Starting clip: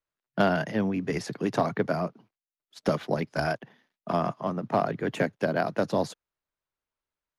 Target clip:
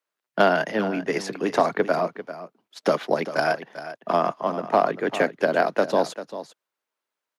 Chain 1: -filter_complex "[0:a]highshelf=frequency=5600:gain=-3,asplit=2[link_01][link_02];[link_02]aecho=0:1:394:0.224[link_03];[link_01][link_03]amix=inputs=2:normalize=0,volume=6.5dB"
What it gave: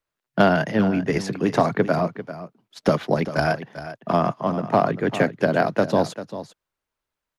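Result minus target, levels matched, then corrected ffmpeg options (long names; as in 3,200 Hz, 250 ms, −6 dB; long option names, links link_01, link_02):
250 Hz band +4.5 dB
-filter_complex "[0:a]highpass=320,highshelf=frequency=5600:gain=-3,asplit=2[link_01][link_02];[link_02]aecho=0:1:394:0.224[link_03];[link_01][link_03]amix=inputs=2:normalize=0,volume=6.5dB"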